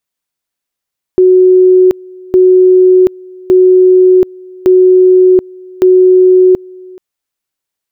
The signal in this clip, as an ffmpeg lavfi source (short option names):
-f lavfi -i "aevalsrc='pow(10,(-2-26*gte(mod(t,1.16),0.73))/20)*sin(2*PI*369*t)':d=5.8:s=44100"